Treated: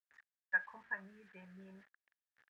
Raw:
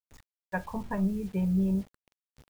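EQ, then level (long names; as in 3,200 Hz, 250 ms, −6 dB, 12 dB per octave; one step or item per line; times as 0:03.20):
resonant band-pass 1,700 Hz, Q 7.1
+5.5 dB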